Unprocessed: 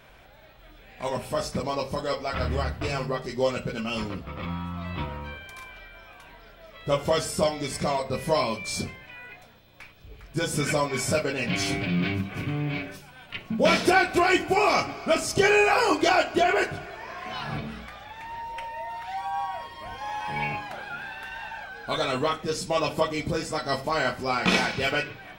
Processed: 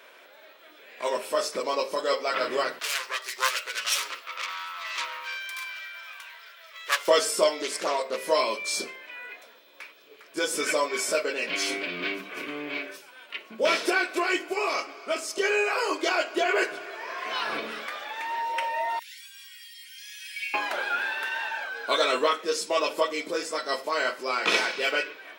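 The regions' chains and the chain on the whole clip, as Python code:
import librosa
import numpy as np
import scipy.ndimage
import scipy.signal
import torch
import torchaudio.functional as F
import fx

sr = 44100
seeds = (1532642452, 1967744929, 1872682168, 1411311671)

y = fx.chain(x, sr, fx.self_delay(depth_ms=0.61),
    fx.highpass(hz=1400.0, slope=12), at=(2.79, 7.08))
y = fx.chain(y, sr, fx.highpass(hz=130.0, slope=12),
    fx.doppler_dist(depth_ms=0.44), at=(7.62, 8.18))
y = fx.chain(y, sr, fx.cheby2_highpass(hz=940.0, order=4, stop_db=40),
    fx.differentiator(), at=(18.99, 20.54))
y = fx.rider(y, sr, range_db=10, speed_s=2.0)
y = scipy.signal.sosfilt(scipy.signal.butter(4, 350.0, 'highpass', fs=sr, output='sos'), y)
y = fx.peak_eq(y, sr, hz=770.0, db=-11.5, octaves=0.22)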